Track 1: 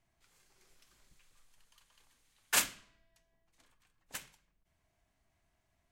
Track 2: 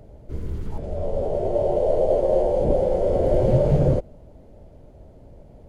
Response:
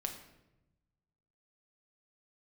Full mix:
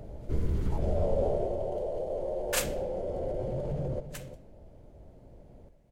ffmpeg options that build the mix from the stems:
-filter_complex "[0:a]volume=-4dB,asplit=2[link_01][link_02];[link_02]volume=-10.5dB[link_03];[1:a]alimiter=limit=-15dB:level=0:latency=1:release=22,acompressor=threshold=-24dB:ratio=6,volume=-0.5dB,afade=type=out:start_time=1.19:duration=0.38:silence=0.398107,asplit=3[link_04][link_05][link_06];[link_05]volume=-8.5dB[link_07];[link_06]volume=-9dB[link_08];[2:a]atrim=start_sample=2205[link_09];[link_03][link_07]amix=inputs=2:normalize=0[link_10];[link_10][link_09]afir=irnorm=-1:irlink=0[link_11];[link_08]aecho=0:1:347:1[link_12];[link_01][link_04][link_11][link_12]amix=inputs=4:normalize=0"

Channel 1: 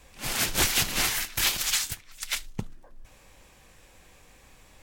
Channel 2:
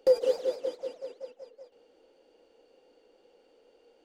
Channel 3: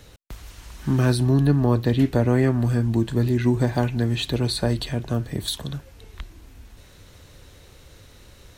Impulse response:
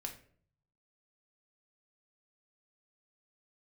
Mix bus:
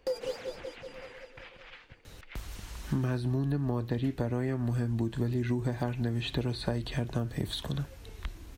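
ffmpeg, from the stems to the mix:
-filter_complex "[0:a]lowpass=frequency=2600:width=0.5412,lowpass=frequency=2600:width=1.3066,acompressor=threshold=-38dB:ratio=6,volume=-9dB[link_01];[1:a]equalizer=frequency=500:width=1.3:gain=-8.5,volume=-1dB,asplit=2[link_02][link_03];[link_03]volume=-19.5dB[link_04];[2:a]acrossover=split=3400[link_05][link_06];[link_06]acompressor=threshold=-43dB:ratio=4:attack=1:release=60[link_07];[link_05][link_07]amix=inputs=2:normalize=0,adelay=2050,volume=-1.5dB[link_08];[link_04]aecho=0:1:873:1[link_09];[link_01][link_02][link_08][link_09]amix=inputs=4:normalize=0,acompressor=threshold=-26dB:ratio=10"

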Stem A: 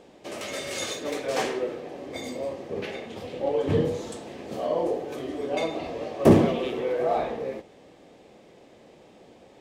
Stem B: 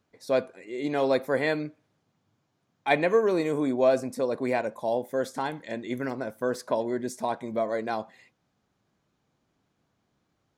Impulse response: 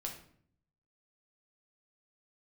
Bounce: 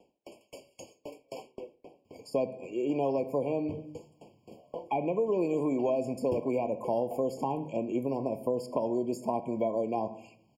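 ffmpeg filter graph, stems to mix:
-filter_complex "[0:a]highshelf=frequency=11000:gain=7.5,aeval=exprs='val(0)*pow(10,-38*if(lt(mod(3.8*n/s,1),2*abs(3.8)/1000),1-mod(3.8*n/s,1)/(2*abs(3.8)/1000),(mod(3.8*n/s,1)-2*abs(3.8)/1000)/(1-2*abs(3.8)/1000))/20)':channel_layout=same,volume=-8dB,asplit=2[link_01][link_02];[link_02]volume=-19.5dB[link_03];[1:a]alimiter=limit=-16dB:level=0:latency=1:release=187,adelay=2050,volume=2.5dB,asplit=2[link_04][link_05];[link_05]volume=-6dB[link_06];[2:a]atrim=start_sample=2205[link_07];[link_03][link_06]amix=inputs=2:normalize=0[link_08];[link_08][link_07]afir=irnorm=-1:irlink=0[link_09];[link_01][link_04][link_09]amix=inputs=3:normalize=0,acrossover=split=320|1100[link_10][link_11][link_12];[link_10]acompressor=threshold=-35dB:ratio=4[link_13];[link_11]acompressor=threshold=-30dB:ratio=4[link_14];[link_12]acompressor=threshold=-46dB:ratio=4[link_15];[link_13][link_14][link_15]amix=inputs=3:normalize=0,afftfilt=real='re*eq(mod(floor(b*sr/1024/1100),2),0)':imag='im*eq(mod(floor(b*sr/1024/1100),2),0)':win_size=1024:overlap=0.75"

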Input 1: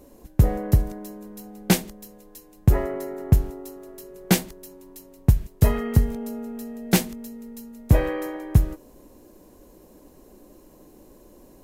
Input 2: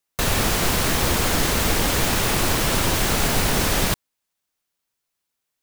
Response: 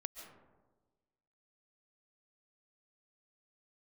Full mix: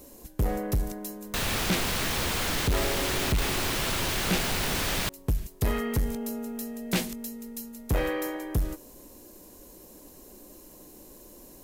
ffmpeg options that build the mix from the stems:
-filter_complex "[0:a]volume=-1.5dB[link_01];[1:a]adelay=1150,volume=-8dB[link_02];[link_01][link_02]amix=inputs=2:normalize=0,acrossover=split=3900[link_03][link_04];[link_04]acompressor=threshold=-42dB:ratio=4:attack=1:release=60[link_05];[link_03][link_05]amix=inputs=2:normalize=0,highshelf=frequency=2700:gain=11.5,asoftclip=type=tanh:threshold=-20.5dB"

